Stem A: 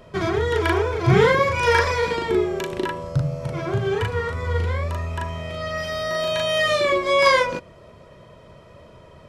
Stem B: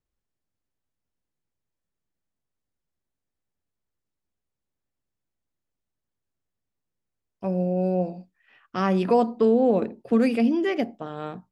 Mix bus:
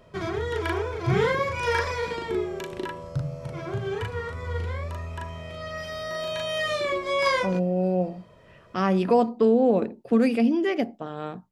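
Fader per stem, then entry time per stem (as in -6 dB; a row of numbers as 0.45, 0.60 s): -7.0, 0.0 dB; 0.00, 0.00 s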